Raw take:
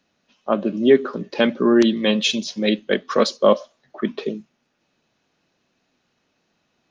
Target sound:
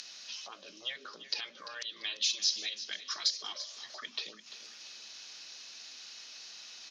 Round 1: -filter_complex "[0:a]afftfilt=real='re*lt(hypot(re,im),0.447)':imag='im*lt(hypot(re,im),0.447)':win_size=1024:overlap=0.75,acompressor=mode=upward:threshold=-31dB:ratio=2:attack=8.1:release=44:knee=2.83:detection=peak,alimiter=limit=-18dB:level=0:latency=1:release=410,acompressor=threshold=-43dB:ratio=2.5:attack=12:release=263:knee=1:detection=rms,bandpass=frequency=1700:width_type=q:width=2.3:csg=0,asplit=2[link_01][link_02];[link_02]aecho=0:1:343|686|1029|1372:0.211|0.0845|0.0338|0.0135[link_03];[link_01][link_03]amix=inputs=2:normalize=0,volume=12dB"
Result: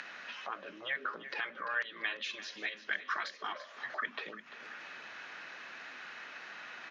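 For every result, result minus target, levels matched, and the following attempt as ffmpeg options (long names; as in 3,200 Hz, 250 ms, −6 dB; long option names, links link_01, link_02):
2,000 Hz band +12.0 dB; downward compressor: peak gain reduction +4 dB
-filter_complex "[0:a]afftfilt=real='re*lt(hypot(re,im),0.447)':imag='im*lt(hypot(re,im),0.447)':win_size=1024:overlap=0.75,acompressor=mode=upward:threshold=-31dB:ratio=2:attack=8.1:release=44:knee=2.83:detection=peak,alimiter=limit=-18dB:level=0:latency=1:release=410,acompressor=threshold=-43dB:ratio=2.5:attack=12:release=263:knee=1:detection=rms,bandpass=frequency=5100:width_type=q:width=2.3:csg=0,asplit=2[link_01][link_02];[link_02]aecho=0:1:343|686|1029|1372:0.211|0.0845|0.0338|0.0135[link_03];[link_01][link_03]amix=inputs=2:normalize=0,volume=12dB"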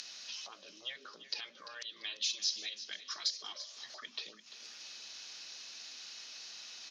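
downward compressor: peak gain reduction +4 dB
-filter_complex "[0:a]afftfilt=real='re*lt(hypot(re,im),0.447)':imag='im*lt(hypot(re,im),0.447)':win_size=1024:overlap=0.75,acompressor=mode=upward:threshold=-31dB:ratio=2:attack=8.1:release=44:knee=2.83:detection=peak,alimiter=limit=-18dB:level=0:latency=1:release=410,acompressor=threshold=-36dB:ratio=2.5:attack=12:release=263:knee=1:detection=rms,bandpass=frequency=5100:width_type=q:width=2.3:csg=0,asplit=2[link_01][link_02];[link_02]aecho=0:1:343|686|1029|1372:0.211|0.0845|0.0338|0.0135[link_03];[link_01][link_03]amix=inputs=2:normalize=0,volume=12dB"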